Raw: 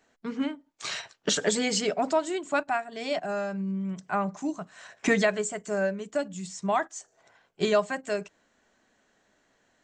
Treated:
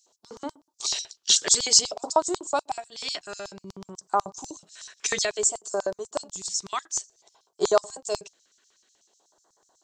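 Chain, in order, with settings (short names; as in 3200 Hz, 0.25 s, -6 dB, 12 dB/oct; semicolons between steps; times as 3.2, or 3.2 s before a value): phaser stages 2, 0.55 Hz, lowest notch 770–2400 Hz; LFO high-pass square 8.1 Hz 380–5600 Hz; graphic EQ 250/500/1000/2000/4000 Hz -11/-8/+9/-5/+4 dB; gain +5.5 dB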